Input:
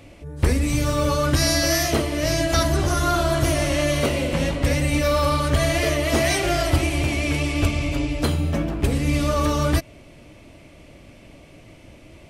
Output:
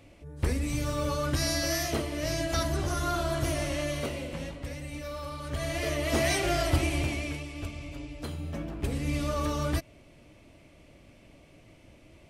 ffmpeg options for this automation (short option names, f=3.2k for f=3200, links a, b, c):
-af "volume=10.5dB,afade=t=out:st=3.59:d=1.11:silence=0.354813,afade=t=in:st=5.37:d=0.88:silence=0.251189,afade=t=out:st=6.95:d=0.5:silence=0.298538,afade=t=in:st=8.19:d=0.88:silence=0.421697"